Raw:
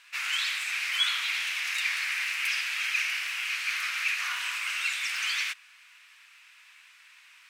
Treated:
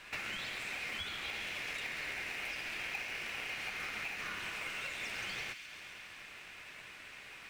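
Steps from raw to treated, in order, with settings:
high-shelf EQ 2,200 Hz −9 dB
downward compressor 10 to 1, threshold −47 dBFS, peak gain reduction 19.5 dB
in parallel at −10 dB: decimation without filtering 27×
on the sum: delay with a high-pass on its return 135 ms, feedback 77%, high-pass 2,200 Hz, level −9 dB
on a send at −11 dB: convolution reverb RT60 0.55 s, pre-delay 3 ms
on the sum: level +7.5 dB

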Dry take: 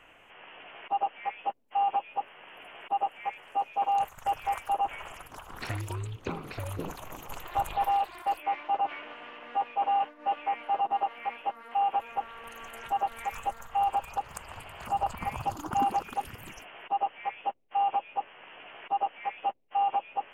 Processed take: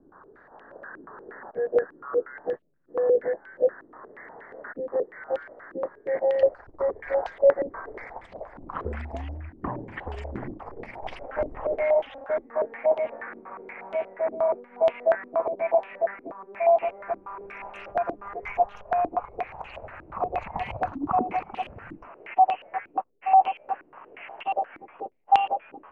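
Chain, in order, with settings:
gliding playback speed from 57% → 100%
low-pass on a step sequencer 8.4 Hz 310–3,000 Hz

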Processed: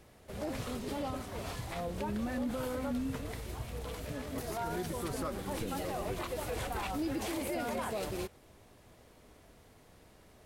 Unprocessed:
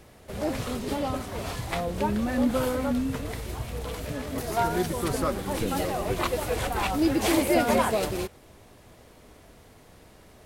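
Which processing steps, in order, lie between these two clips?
brickwall limiter −20.5 dBFS, peak gain reduction 9.5 dB
level −7 dB

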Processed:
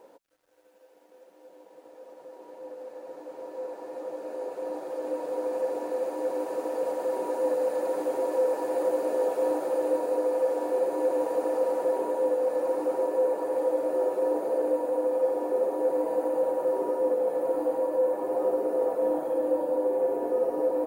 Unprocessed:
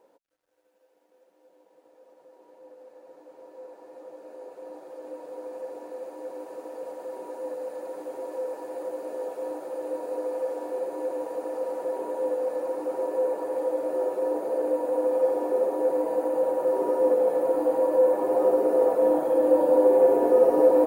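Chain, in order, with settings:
speech leveller 0.5 s
level −2 dB

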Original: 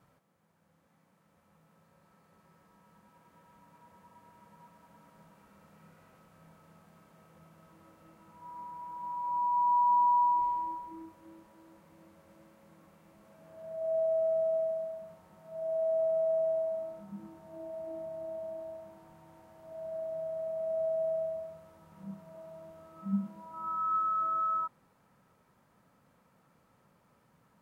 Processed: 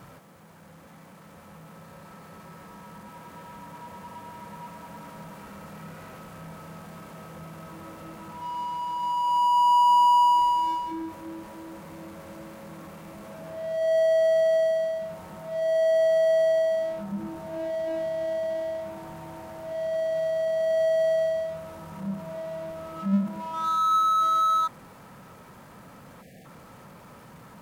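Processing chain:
power curve on the samples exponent 0.7
time-frequency box erased 0:26.22–0:26.45, 780–1,600 Hz
level +6 dB

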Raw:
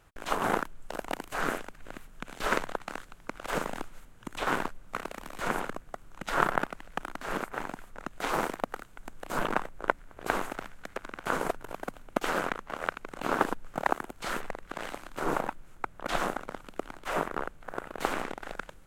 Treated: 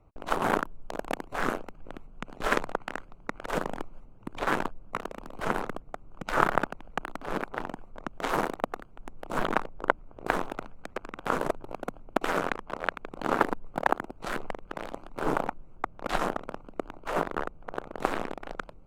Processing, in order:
adaptive Wiener filter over 25 samples
0:02.74–0:03.47: dynamic equaliser 1,900 Hz, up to +6 dB, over −58 dBFS, Q 1.8
pitch modulation by a square or saw wave saw up 5.5 Hz, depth 160 cents
level +2.5 dB

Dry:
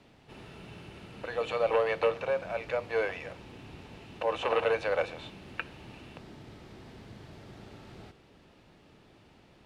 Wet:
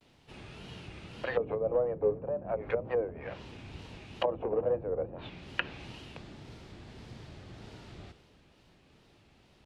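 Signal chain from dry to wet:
treble cut that deepens with the level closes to 350 Hz, closed at −28 dBFS
tape wow and flutter 140 cents
multiband upward and downward expander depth 40%
level +4 dB

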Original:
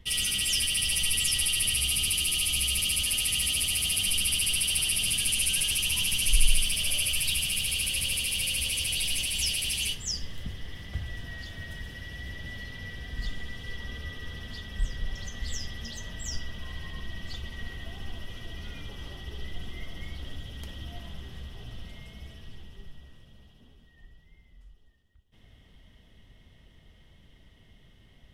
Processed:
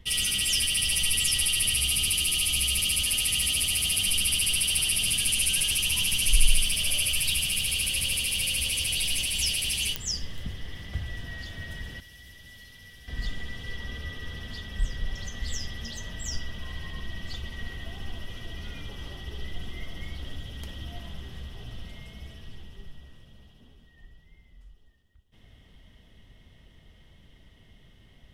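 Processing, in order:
0:12.00–0:13.08: first-order pre-emphasis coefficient 0.8
digital clicks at 0:09.96, −12 dBFS
level +1.5 dB

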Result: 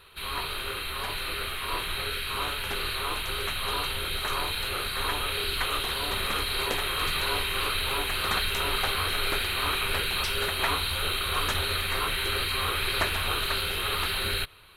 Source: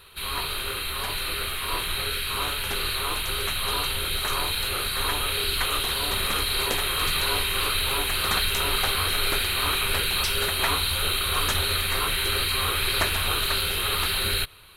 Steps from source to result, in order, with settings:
bass and treble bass −2 dB, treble −6 dB
level −1.5 dB

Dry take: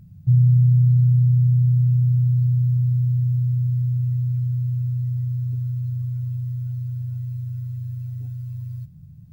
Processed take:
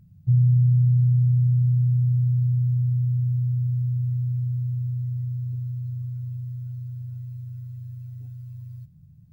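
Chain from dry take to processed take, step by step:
dynamic equaliser 110 Hz, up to +5 dB, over −27 dBFS, Q 2
level −7 dB

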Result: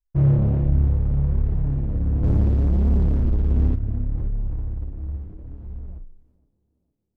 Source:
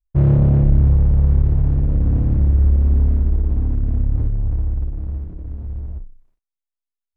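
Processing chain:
0:02.23–0:03.75: leveller curve on the samples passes 2
flanger 0.69 Hz, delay 4 ms, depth 9 ms, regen +39%
on a send: tape delay 460 ms, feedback 56%, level −21 dB, low-pass 1,200 Hz
on the sum: level −1 dB

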